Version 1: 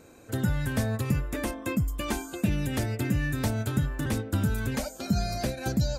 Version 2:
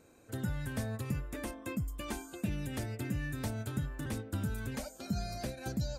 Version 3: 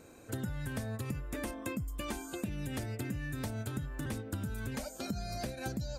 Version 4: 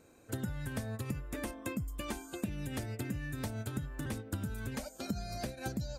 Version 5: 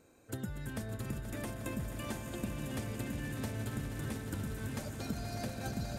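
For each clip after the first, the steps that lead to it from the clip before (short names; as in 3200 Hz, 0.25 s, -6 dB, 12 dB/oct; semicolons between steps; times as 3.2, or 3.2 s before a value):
bell 9000 Hz +3 dB 0.2 oct; gain -9 dB
compressor, threshold -41 dBFS, peak gain reduction 11.5 dB; gain +6.5 dB
upward expander 1.5:1, over -48 dBFS; gain +1.5 dB
swelling echo 0.12 s, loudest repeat 5, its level -10.5 dB; gain -2.5 dB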